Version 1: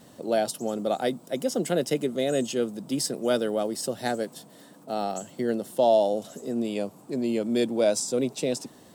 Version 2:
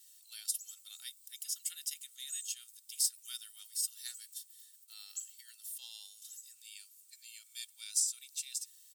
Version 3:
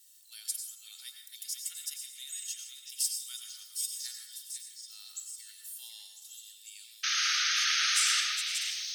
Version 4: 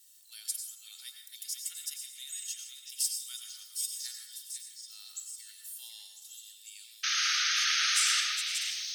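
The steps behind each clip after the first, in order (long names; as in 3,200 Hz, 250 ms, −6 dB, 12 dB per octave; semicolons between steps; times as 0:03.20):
Bessel high-pass filter 2,800 Hz, order 4; first difference; comb filter 2.2 ms, depth 60%; level −1.5 dB
sound drawn into the spectrogram noise, 0:07.03–0:08.21, 1,200–6,600 Hz −30 dBFS; on a send: echo through a band-pass that steps 500 ms, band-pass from 2,900 Hz, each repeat 0.7 octaves, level −4 dB; on the sum: dense smooth reverb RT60 0.93 s, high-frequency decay 0.5×, pre-delay 80 ms, DRR 3 dB
surface crackle 36 per second −61 dBFS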